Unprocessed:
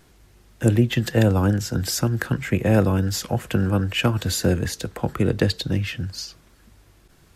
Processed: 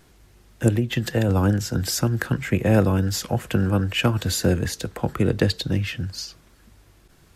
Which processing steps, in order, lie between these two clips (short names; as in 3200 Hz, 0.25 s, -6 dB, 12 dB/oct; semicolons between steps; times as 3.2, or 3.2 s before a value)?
0.68–1.29 compressor 4:1, threshold -18 dBFS, peak gain reduction 6.5 dB